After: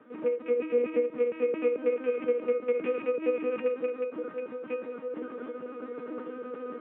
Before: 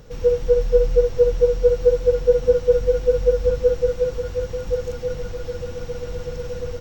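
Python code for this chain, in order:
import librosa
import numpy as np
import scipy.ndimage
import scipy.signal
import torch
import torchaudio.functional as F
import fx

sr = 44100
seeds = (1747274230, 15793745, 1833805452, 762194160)

y = fx.rattle_buzz(x, sr, strikes_db=-23.0, level_db=-16.0)
y = fx.lpc_vocoder(y, sr, seeds[0], excitation='pitch_kept', order=10)
y = fx.cabinet(y, sr, low_hz=210.0, low_slope=24, high_hz=2400.0, hz=(230.0, 620.0, 1200.0), db=(7, -5, 9))
y = fx.comb_fb(y, sr, f0_hz=310.0, decay_s=0.42, harmonics='all', damping=0.0, mix_pct=90)
y = fx.echo_feedback(y, sr, ms=198, feedback_pct=53, wet_db=-21.0)
y = F.gain(torch.from_numpy(y), 8.0).numpy()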